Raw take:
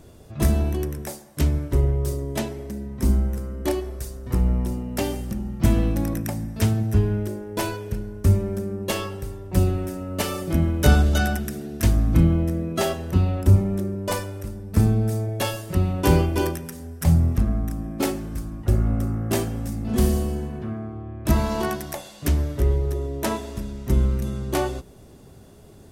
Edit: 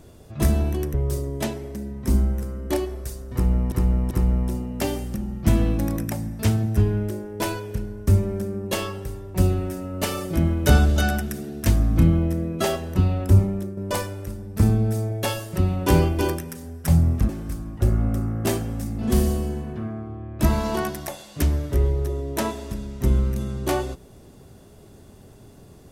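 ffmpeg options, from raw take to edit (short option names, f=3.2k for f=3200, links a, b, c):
-filter_complex "[0:a]asplit=6[a][b][c][d][e][f];[a]atrim=end=0.942[g];[b]atrim=start=1.888:end=4.672[h];[c]atrim=start=4.278:end=4.672[i];[d]atrim=start=4.278:end=13.94,asetpts=PTS-STARTPTS,afade=t=out:st=9.322:d=0.34:silence=0.398107[j];[e]atrim=start=13.94:end=17.462,asetpts=PTS-STARTPTS,afade=t=in:d=0.004:c=hsin:silence=0.398107[k];[f]atrim=start=18.148[l];[g][h]acrossfade=d=0.004:c1=hsin:c2=hsin[m];[m][i]acrossfade=d=0.004:c1=hsin:c2=hsin[n];[j][k]concat=n=2:v=0:a=1[o];[n][o]acrossfade=d=0.004:c1=hsin:c2=hsin[p];[p][l]acrossfade=d=0.004:c1=hsin:c2=hsin"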